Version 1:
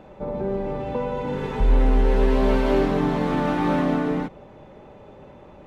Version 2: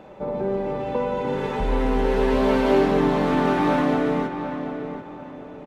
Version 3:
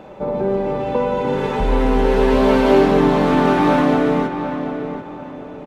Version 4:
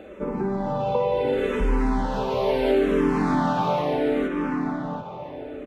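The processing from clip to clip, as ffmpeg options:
-filter_complex "[0:a]lowshelf=f=110:g=-11.5,asplit=2[a][b];[b]adelay=737,lowpass=f=2.6k:p=1,volume=-8.5dB,asplit=2[c][d];[d]adelay=737,lowpass=f=2.6k:p=1,volume=0.32,asplit=2[e][f];[f]adelay=737,lowpass=f=2.6k:p=1,volume=0.32,asplit=2[g][h];[h]adelay=737,lowpass=f=2.6k:p=1,volume=0.32[i];[a][c][e][g][i]amix=inputs=5:normalize=0,volume=2.5dB"
-af "equalizer=f=1.9k:w=5.3:g=-2,volume=5.5dB"
-filter_complex "[0:a]acompressor=threshold=-17dB:ratio=3,asplit=2[a][b];[b]afreqshift=-0.72[c];[a][c]amix=inputs=2:normalize=1"

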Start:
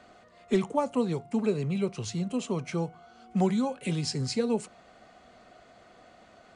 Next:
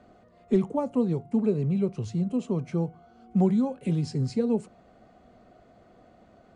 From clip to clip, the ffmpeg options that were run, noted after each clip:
-af "tiltshelf=f=800:g=8,volume=-3dB"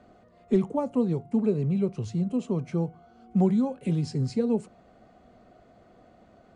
-af anull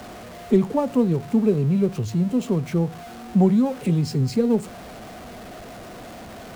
-af "aeval=exprs='val(0)+0.5*0.01*sgn(val(0))':c=same,volume=5dB"

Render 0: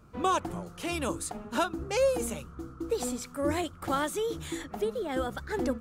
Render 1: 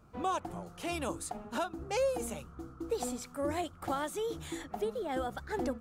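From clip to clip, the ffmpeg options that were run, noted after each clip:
-af "equalizer=f=750:w=2.8:g=6,alimiter=limit=-18.5dB:level=0:latency=1:release=341,volume=-4.5dB"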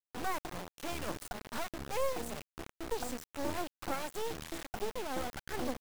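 -af "highshelf=f=6.5k:g=-10,acrusher=bits=4:dc=4:mix=0:aa=0.000001,volume=1.5dB"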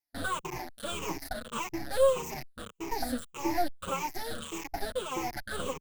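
-filter_complex "[0:a]afftfilt=real='re*pow(10,17/40*sin(2*PI*(0.74*log(max(b,1)*sr/1024/100)/log(2)-(-1.7)*(pts-256)/sr)))':imag='im*pow(10,17/40*sin(2*PI*(0.74*log(max(b,1)*sr/1024/100)/log(2)-(-1.7)*(pts-256)/sr)))':win_size=1024:overlap=0.75,asplit=2[a][b];[b]adelay=6.6,afreqshift=-1.1[c];[a][c]amix=inputs=2:normalize=1,volume=4.5dB"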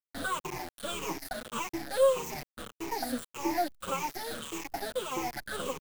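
-filter_complex "[0:a]acrossover=split=150|1800|5000[a][b][c][d];[a]acompressor=threshold=-46dB:ratio=6[e];[e][b][c][d]amix=inputs=4:normalize=0,acrusher=bits=8:dc=4:mix=0:aa=0.000001"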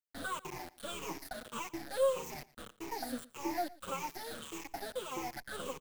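-af "aecho=1:1:115:0.0891,volume=-6dB"

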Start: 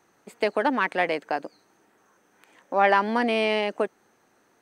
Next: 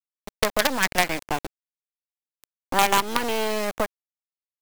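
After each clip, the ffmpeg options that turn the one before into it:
-filter_complex "[0:a]afftfilt=real='re*pow(10,12/40*sin(2*PI*(0.64*log(max(b,1)*sr/1024/100)/log(2)-(0.63)*(pts-256)/sr)))':imag='im*pow(10,12/40*sin(2*PI*(0.64*log(max(b,1)*sr/1024/100)/log(2)-(0.63)*(pts-256)/sr)))':win_size=1024:overlap=0.75,acrusher=bits=3:dc=4:mix=0:aa=0.000001,acrossover=split=610|6300[a][b][c];[a]acompressor=threshold=-31dB:ratio=4[d];[b]acompressor=threshold=-23dB:ratio=4[e];[c]acompressor=threshold=-31dB:ratio=4[f];[d][e][f]amix=inputs=3:normalize=0,volume=5dB"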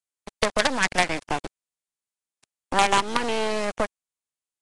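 -ar 22050 -c:a nellymoser

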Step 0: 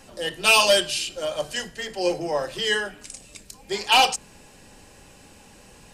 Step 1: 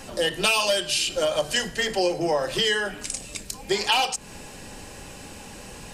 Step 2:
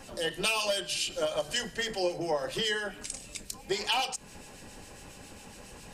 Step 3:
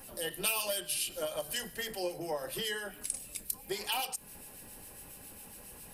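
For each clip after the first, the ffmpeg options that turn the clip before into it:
-af "acompressor=threshold=-28dB:ratio=10,volume=8.5dB"
-filter_complex "[0:a]acrossover=split=2100[a][b];[a]aeval=exprs='val(0)*(1-0.5/2+0.5/2*cos(2*PI*7.3*n/s))':c=same[c];[b]aeval=exprs='val(0)*(1-0.5/2-0.5/2*cos(2*PI*7.3*n/s))':c=same[d];[c][d]amix=inputs=2:normalize=0,volume=-5dB"
-af "aexciter=amount=11:drive=4.4:freq=9.7k,volume=-6dB"

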